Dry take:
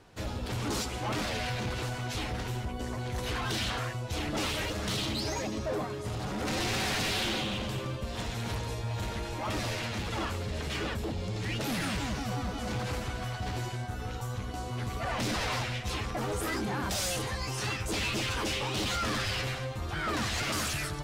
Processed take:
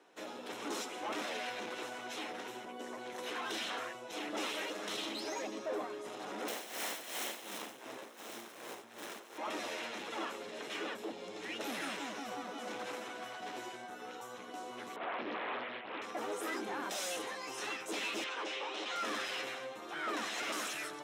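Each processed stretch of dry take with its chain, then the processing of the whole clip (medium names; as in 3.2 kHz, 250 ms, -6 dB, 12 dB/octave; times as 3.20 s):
6.48–9.38 s: self-modulated delay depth 0.83 ms + tremolo 2.7 Hz, depth 71%
14.96–16.02 s: CVSD coder 16 kbps + loudspeaker Doppler distortion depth 0.76 ms
18.24–18.96 s: high-pass 380 Hz + distance through air 94 m
whole clip: high-pass 280 Hz 24 dB/octave; treble shelf 6.6 kHz -5 dB; band-stop 4.6 kHz, Q 6.7; trim -4.5 dB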